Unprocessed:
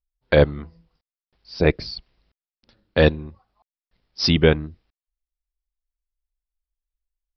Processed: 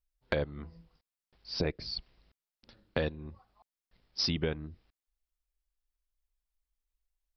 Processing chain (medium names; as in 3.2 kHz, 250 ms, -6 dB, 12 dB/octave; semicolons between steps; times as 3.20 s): compression 8:1, threshold -29 dBFS, peak gain reduction 19 dB